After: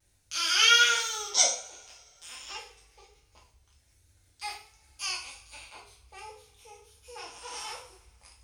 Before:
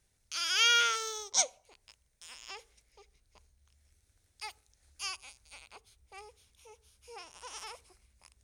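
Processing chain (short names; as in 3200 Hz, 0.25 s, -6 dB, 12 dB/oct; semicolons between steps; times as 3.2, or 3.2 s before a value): two-slope reverb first 0.46 s, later 2.7 s, from -27 dB, DRR -4 dB; vibrato 1.3 Hz 47 cents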